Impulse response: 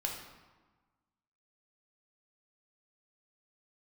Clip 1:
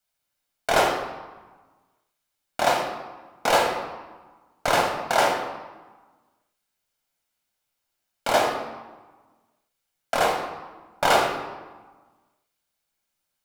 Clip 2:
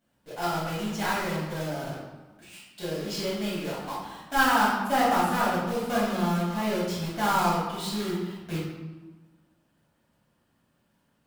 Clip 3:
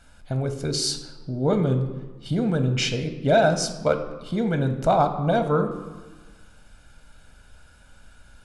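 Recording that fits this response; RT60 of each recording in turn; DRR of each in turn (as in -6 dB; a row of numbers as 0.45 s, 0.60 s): 1; 1.3 s, 1.3 s, 1.3 s; -0.5 dB, -10.0 dB, 7.0 dB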